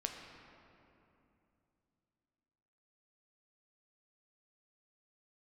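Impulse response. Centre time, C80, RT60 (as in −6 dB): 72 ms, 5.0 dB, 2.8 s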